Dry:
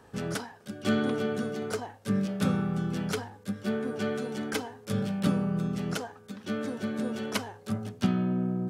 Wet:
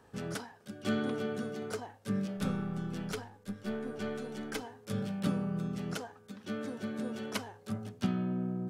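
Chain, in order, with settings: 2.37–4.62 half-wave gain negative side -3 dB; gain -5.5 dB

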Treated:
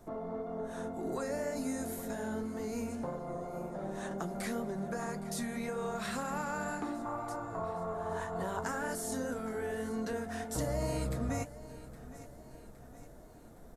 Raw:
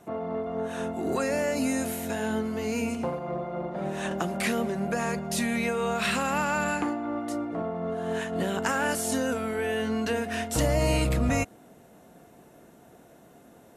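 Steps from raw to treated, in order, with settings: added noise brown -51 dBFS; in parallel at +1 dB: compressor, threshold -36 dBFS, peak gain reduction 14.5 dB; on the sum: bell 2700 Hz -12 dB 0.62 oct; on a send: feedback echo 0.815 s, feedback 54%, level -16.5 dB; on the sum: flange 1.9 Hz, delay 4.3 ms, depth 6.8 ms, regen -51%; 7.05–8.64 fifteen-band EQ 100 Hz +12 dB, 250 Hz -11 dB, 1000 Hz +12 dB; gain -7 dB

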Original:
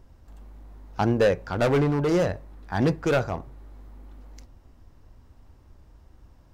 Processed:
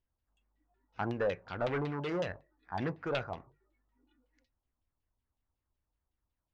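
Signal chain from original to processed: spectral noise reduction 20 dB; pre-emphasis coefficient 0.8; LFO low-pass saw down 5.4 Hz 760–3700 Hz

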